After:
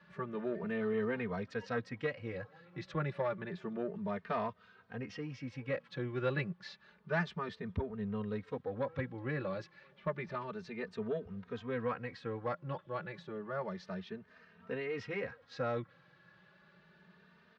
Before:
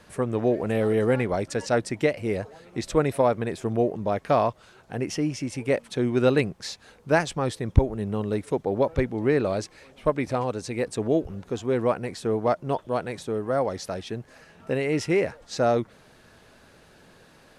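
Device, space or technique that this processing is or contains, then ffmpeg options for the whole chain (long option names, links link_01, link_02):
barber-pole flanger into a guitar amplifier: -filter_complex "[0:a]asettb=1/sr,asplit=3[link_01][link_02][link_03];[link_01]atrim=end=11.424[link_04];[link_02]atrim=start=11.42:end=12.38,asetpts=PTS-STARTPTS,afade=type=in:duration=0.004:curve=qsin,afade=type=out:start_time=0.956:duration=0.004:curve=qsin,equalizer=frequency=2000:width=1.2:gain=3.5[link_05];[link_03]atrim=start=12.376[link_06];[link_04][link_05]acrossfade=duration=0.004:curve1=hsin:curve2=qsin[link_07];[link_07][link_06]acrossfade=duration=0.004:curve1=qsin:curve2=hsin,asplit=2[link_08][link_09];[link_09]adelay=3,afreqshift=0.3[link_10];[link_08][link_10]amix=inputs=2:normalize=1,asoftclip=type=tanh:threshold=-14.5dB,highpass=100,equalizer=frequency=180:width_type=q:width=4:gain=9,equalizer=frequency=300:width_type=q:width=4:gain=-9,equalizer=frequency=710:width_type=q:width=4:gain=-6,equalizer=frequency=1200:width_type=q:width=4:gain=5,equalizer=frequency=1700:width_type=q:width=4:gain=6,lowpass=frequency=4200:width=0.5412,lowpass=frequency=4200:width=1.3066,volume=-8.5dB"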